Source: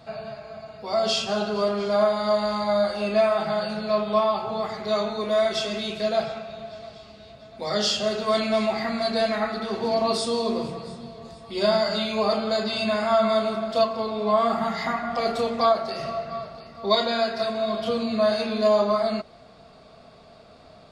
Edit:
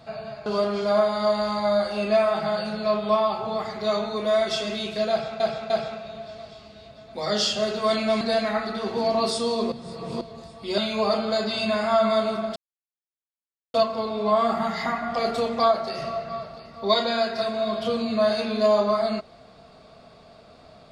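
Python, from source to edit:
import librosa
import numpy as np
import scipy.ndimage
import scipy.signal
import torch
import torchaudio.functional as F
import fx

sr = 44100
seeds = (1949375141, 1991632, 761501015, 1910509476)

y = fx.edit(x, sr, fx.cut(start_s=0.46, length_s=1.04),
    fx.repeat(start_s=6.14, length_s=0.3, count=3),
    fx.cut(start_s=8.65, length_s=0.43),
    fx.reverse_span(start_s=10.59, length_s=0.49),
    fx.cut(start_s=11.65, length_s=0.32),
    fx.insert_silence(at_s=13.75, length_s=1.18), tone=tone)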